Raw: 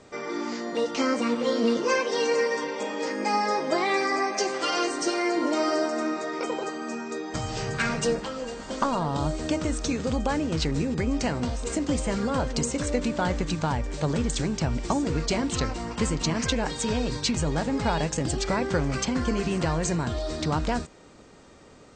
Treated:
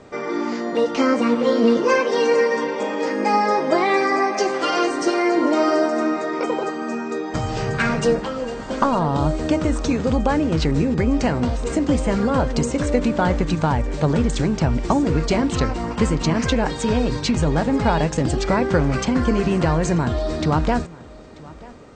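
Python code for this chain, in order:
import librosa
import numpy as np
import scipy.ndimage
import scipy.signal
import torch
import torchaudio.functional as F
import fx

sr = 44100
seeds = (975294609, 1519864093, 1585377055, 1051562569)

y = fx.high_shelf(x, sr, hz=3400.0, db=-10.5)
y = y + 10.0 ** (-21.5 / 20.0) * np.pad(y, (int(937 * sr / 1000.0), 0))[:len(y)]
y = y * librosa.db_to_amplitude(7.5)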